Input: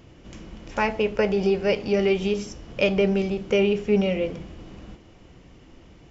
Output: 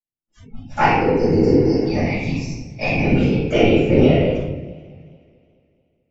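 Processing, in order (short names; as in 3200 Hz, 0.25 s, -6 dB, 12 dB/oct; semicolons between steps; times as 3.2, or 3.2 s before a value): reverb removal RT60 1 s; gate -40 dBFS, range -33 dB; 1.89–3.04 fixed phaser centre 2100 Hz, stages 8; whisperiser; 0.97–1.83 spectral repair 530–4500 Hz before; shoebox room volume 420 m³, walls mixed, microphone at 7.5 m; spectral noise reduction 29 dB; warbling echo 0.216 s, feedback 58%, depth 100 cents, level -21.5 dB; gain -7.5 dB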